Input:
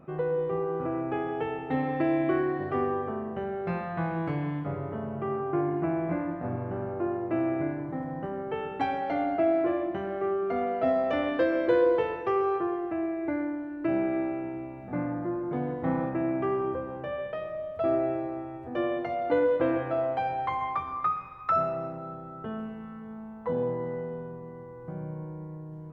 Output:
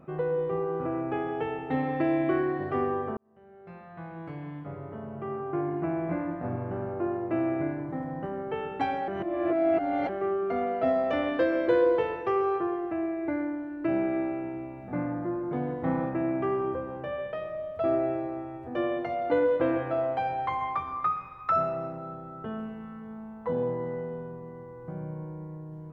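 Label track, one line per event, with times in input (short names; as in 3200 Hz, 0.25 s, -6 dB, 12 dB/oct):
3.170000	6.380000	fade in
9.080000	10.090000	reverse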